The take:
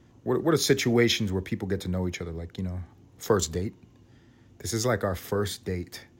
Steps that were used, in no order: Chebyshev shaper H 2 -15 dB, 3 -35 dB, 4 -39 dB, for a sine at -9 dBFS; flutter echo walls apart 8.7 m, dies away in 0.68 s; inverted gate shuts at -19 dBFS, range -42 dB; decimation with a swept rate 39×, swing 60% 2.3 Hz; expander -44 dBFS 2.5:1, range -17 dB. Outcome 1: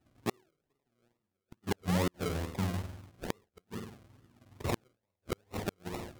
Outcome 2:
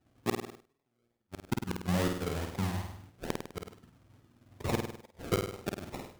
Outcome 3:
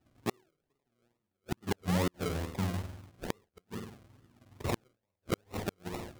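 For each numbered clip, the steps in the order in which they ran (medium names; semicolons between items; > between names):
flutter echo > decimation with a swept rate > Chebyshev shaper > inverted gate > expander; Chebyshev shaper > decimation with a swept rate > inverted gate > flutter echo > expander; Chebyshev shaper > flutter echo > decimation with a swept rate > inverted gate > expander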